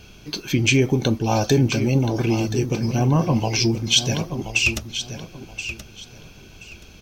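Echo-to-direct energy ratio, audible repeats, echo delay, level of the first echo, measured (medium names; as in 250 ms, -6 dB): -10.5 dB, 2, 1027 ms, -10.5 dB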